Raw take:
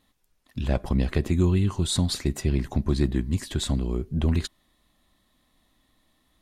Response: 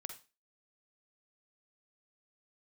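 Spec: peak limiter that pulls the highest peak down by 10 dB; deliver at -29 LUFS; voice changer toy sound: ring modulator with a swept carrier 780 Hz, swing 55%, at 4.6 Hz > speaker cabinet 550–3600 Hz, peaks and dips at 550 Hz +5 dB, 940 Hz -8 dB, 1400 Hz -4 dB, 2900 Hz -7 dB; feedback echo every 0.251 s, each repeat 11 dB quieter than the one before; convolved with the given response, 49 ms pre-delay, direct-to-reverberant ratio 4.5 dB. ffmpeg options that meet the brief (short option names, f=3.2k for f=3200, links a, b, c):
-filter_complex "[0:a]alimiter=limit=-20.5dB:level=0:latency=1,aecho=1:1:251|502|753:0.282|0.0789|0.0221,asplit=2[a][b];[1:a]atrim=start_sample=2205,adelay=49[c];[b][c]afir=irnorm=-1:irlink=0,volume=-1dB[d];[a][d]amix=inputs=2:normalize=0,aeval=exprs='val(0)*sin(2*PI*780*n/s+780*0.55/4.6*sin(2*PI*4.6*n/s))':c=same,highpass=550,equalizer=f=550:t=q:w=4:g=5,equalizer=f=940:t=q:w=4:g=-8,equalizer=f=1.4k:t=q:w=4:g=-4,equalizer=f=2.9k:t=q:w=4:g=-7,lowpass=f=3.6k:w=0.5412,lowpass=f=3.6k:w=1.3066,volume=6dB"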